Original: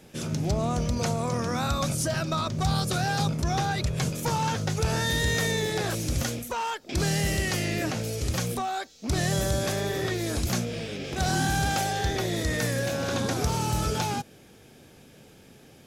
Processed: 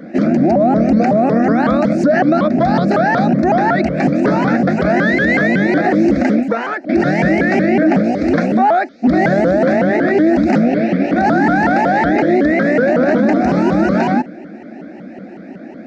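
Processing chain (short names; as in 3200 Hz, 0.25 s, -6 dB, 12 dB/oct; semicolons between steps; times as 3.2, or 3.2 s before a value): fixed phaser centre 630 Hz, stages 8; 11.4–11.88 careless resampling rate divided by 3×, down filtered, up zero stuff; speaker cabinet 190–3200 Hz, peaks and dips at 210 Hz +9 dB, 330 Hz +10 dB, 670 Hz +6 dB, 1200 Hz -9 dB, 3000 Hz -6 dB; maximiser +23.5 dB; shaped vibrato saw up 5.4 Hz, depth 250 cents; gain -4 dB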